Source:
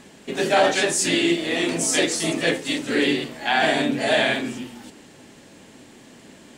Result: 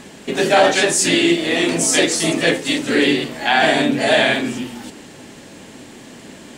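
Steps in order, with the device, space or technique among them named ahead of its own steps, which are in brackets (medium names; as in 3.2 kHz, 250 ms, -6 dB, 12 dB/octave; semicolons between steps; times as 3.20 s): parallel compression (in parallel at -4.5 dB: compression, threshold -31 dBFS, peak gain reduction 16.5 dB); on the sum: trim +4 dB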